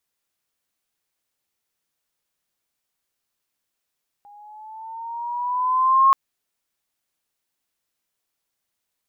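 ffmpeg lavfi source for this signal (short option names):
-f lavfi -i "aevalsrc='pow(10,(-10+34*(t/1.88-1))/20)*sin(2*PI*814*1.88/(5*log(2)/12)*(exp(5*log(2)/12*t/1.88)-1))':d=1.88:s=44100"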